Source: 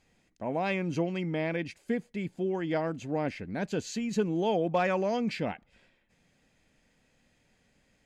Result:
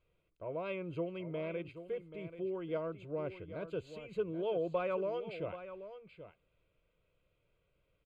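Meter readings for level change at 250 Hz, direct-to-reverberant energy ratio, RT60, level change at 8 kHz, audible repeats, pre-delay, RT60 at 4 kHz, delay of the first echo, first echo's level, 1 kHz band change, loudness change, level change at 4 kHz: −12.0 dB, no reverb audible, no reverb audible, below −25 dB, 1, no reverb audible, no reverb audible, 782 ms, −12.0 dB, −11.5 dB, −8.5 dB, −12.5 dB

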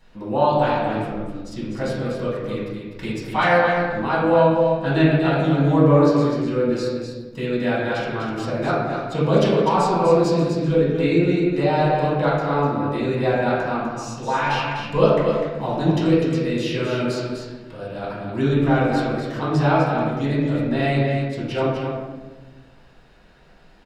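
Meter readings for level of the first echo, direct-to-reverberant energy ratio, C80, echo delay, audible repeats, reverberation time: −5.5 dB, −9.0 dB, 0.5 dB, 250 ms, 1, 1.2 s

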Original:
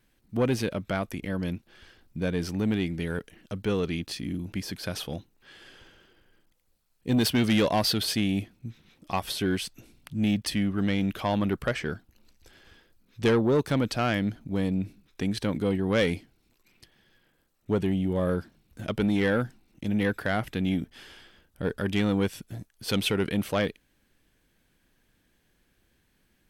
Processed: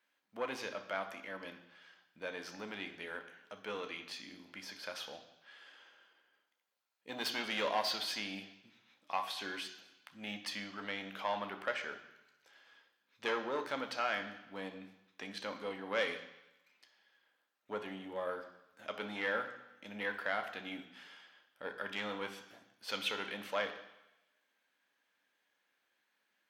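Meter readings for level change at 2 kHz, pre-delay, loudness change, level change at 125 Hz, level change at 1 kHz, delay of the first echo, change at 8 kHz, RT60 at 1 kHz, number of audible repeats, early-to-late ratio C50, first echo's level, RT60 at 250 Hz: −5.0 dB, 3 ms, −11.5 dB, −28.5 dB, −5.5 dB, no echo audible, −12.5 dB, 1.0 s, no echo audible, 10.0 dB, no echo audible, 0.90 s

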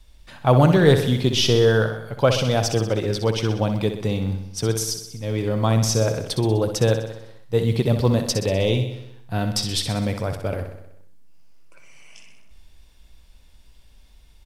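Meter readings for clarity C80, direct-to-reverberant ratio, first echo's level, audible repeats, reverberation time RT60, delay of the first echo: no reverb audible, no reverb audible, −8.5 dB, 6, no reverb audible, 63 ms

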